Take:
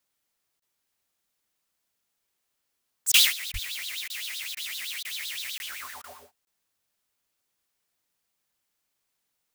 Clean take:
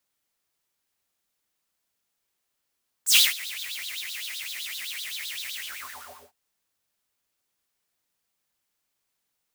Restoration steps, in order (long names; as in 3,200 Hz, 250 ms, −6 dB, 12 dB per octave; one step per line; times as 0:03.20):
high-pass at the plosives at 0:03.52
repair the gap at 0:05.58/0:06.45, 21 ms
repair the gap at 0:00.60/0:03.12/0:03.52/0:04.08/0:04.55/0:05.03/0:06.02, 18 ms